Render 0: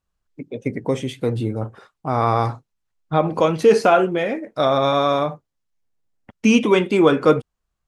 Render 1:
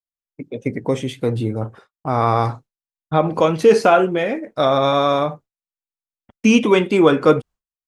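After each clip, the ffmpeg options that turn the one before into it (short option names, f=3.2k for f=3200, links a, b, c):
-af "agate=range=-33dB:threshold=-36dB:ratio=3:detection=peak,volume=1.5dB"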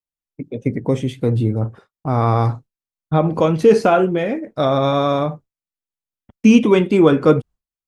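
-af "lowshelf=f=340:g=10,volume=-3.5dB"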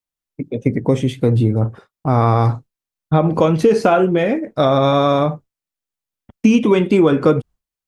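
-af "acompressor=threshold=-13dB:ratio=6,volume=4dB"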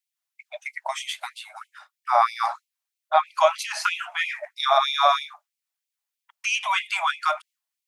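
-af "afftfilt=real='re*gte(b*sr/1024,570*pow(2100/570,0.5+0.5*sin(2*PI*3.1*pts/sr)))':imag='im*gte(b*sr/1024,570*pow(2100/570,0.5+0.5*sin(2*PI*3.1*pts/sr)))':win_size=1024:overlap=0.75,volume=3dB"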